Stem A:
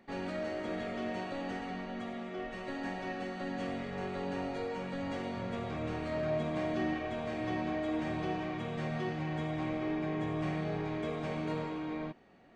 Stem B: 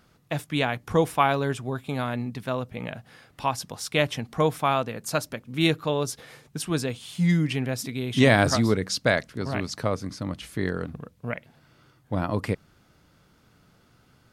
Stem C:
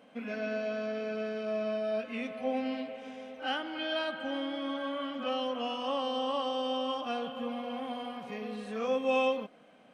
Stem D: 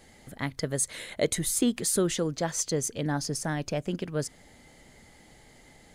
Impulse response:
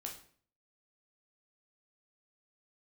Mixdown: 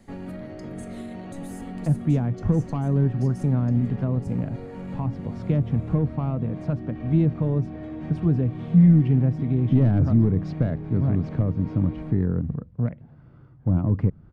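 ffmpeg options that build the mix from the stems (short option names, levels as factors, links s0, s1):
-filter_complex "[0:a]aemphasis=mode=reproduction:type=75fm,volume=0.944[s0];[1:a]lowpass=1200,adelay=1550,volume=1.06[s1];[3:a]alimiter=limit=0.0631:level=0:latency=1,acompressor=threshold=0.0178:ratio=6,volume=0.237,asplit=2[s2][s3];[s3]volume=0.531[s4];[s1]asoftclip=type=tanh:threshold=0.211,alimiter=limit=0.119:level=0:latency=1,volume=1[s5];[s0][s2]amix=inputs=2:normalize=0,alimiter=level_in=2.51:limit=0.0631:level=0:latency=1,volume=0.398,volume=1[s6];[4:a]atrim=start_sample=2205[s7];[s4][s7]afir=irnorm=-1:irlink=0[s8];[s5][s6][s8]amix=inputs=3:normalize=0,bass=f=250:g=6,treble=f=4000:g=3,acrossover=split=370[s9][s10];[s10]acompressor=threshold=0.00631:ratio=2[s11];[s9][s11]amix=inputs=2:normalize=0,lowshelf=f=300:g=6.5"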